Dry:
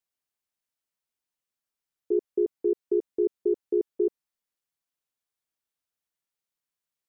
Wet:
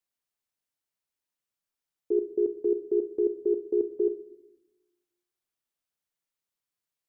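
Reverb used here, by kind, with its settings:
rectangular room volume 330 cubic metres, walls mixed, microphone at 0.33 metres
level −1 dB

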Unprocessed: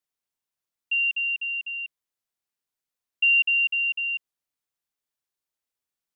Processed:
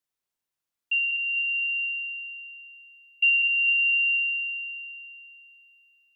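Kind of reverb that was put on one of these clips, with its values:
spring reverb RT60 2.8 s, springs 58 ms, chirp 25 ms, DRR 5.5 dB

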